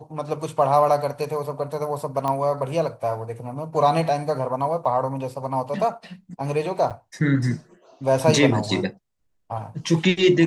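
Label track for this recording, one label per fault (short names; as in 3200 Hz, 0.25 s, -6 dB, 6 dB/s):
2.280000	2.280000	pop -13 dBFS
4.850000	4.850000	gap 4.6 ms
6.900000	6.910000	gap 7.2 ms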